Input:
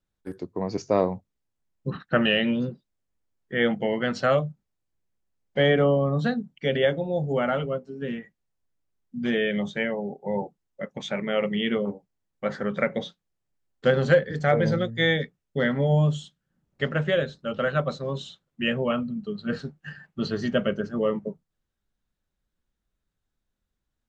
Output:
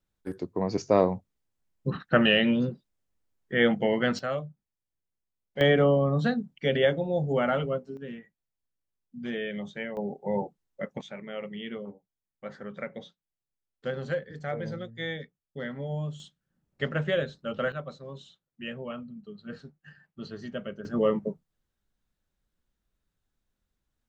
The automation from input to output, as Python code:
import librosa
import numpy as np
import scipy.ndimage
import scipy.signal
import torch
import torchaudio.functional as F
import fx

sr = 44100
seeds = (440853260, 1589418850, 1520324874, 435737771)

y = fx.gain(x, sr, db=fx.steps((0.0, 0.5), (4.19, -9.5), (5.61, -1.0), (7.97, -8.5), (9.97, -1.0), (11.01, -12.0), (16.2, -3.5), (17.72, -12.0), (20.85, 0.5)))